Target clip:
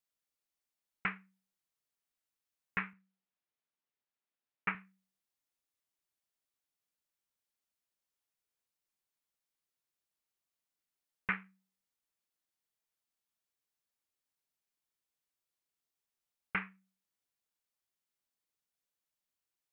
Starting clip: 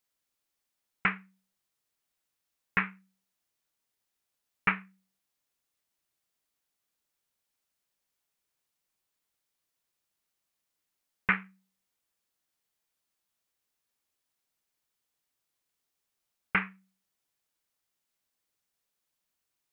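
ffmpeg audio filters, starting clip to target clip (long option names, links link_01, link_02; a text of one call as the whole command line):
ffmpeg -i in.wav -filter_complex "[0:a]asettb=1/sr,asplit=3[link_01][link_02][link_03];[link_01]atrim=end=2.934[link_04];[link_02]atrim=start=2.93:end=4.75,asetpts=PTS-STARTPTS,afade=type=in:duration=0.004:curve=qsin,afade=type=out:start_time=1.816:duration=0.004:curve=qsin,highpass=140,lowpass=3100[link_05];[link_03]atrim=start=4.746[link_06];[link_04][link_05]acrossfade=duration=0.004:curve1=hsin:curve2=qsin[link_07];[link_07][link_06]acrossfade=duration=0.004:curve1=qsin:curve2=hsin,volume=-8dB" out.wav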